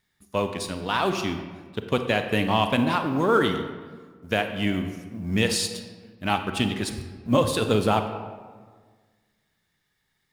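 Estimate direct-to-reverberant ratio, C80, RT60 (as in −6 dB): 7.0 dB, 9.5 dB, 1.6 s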